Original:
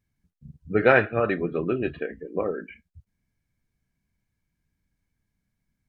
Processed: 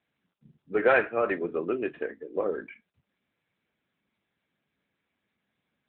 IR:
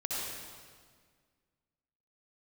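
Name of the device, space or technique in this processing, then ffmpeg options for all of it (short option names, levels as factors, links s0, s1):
telephone: -filter_complex "[0:a]asplit=3[s0][s1][s2];[s0]afade=t=out:st=0.58:d=0.02[s3];[s1]lowshelf=f=210:g=-4.5,afade=t=in:st=0.58:d=0.02,afade=t=out:st=2.43:d=0.02[s4];[s2]afade=t=in:st=2.43:d=0.02[s5];[s3][s4][s5]amix=inputs=3:normalize=0,highpass=280,lowpass=3500,asoftclip=type=tanh:threshold=0.299" -ar 8000 -c:a libopencore_amrnb -b:a 10200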